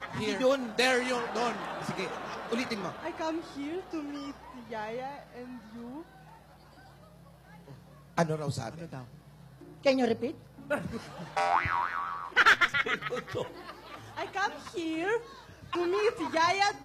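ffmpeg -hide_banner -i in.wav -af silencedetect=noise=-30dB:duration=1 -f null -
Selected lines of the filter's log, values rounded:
silence_start: 5.04
silence_end: 8.18 | silence_duration: 3.13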